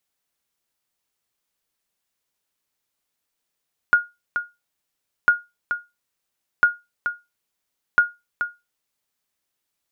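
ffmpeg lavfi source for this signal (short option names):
-f lavfi -i "aevalsrc='0.473*(sin(2*PI*1430*mod(t,1.35))*exp(-6.91*mod(t,1.35)/0.22)+0.355*sin(2*PI*1430*max(mod(t,1.35)-0.43,0))*exp(-6.91*max(mod(t,1.35)-0.43,0)/0.22))':d=5.4:s=44100"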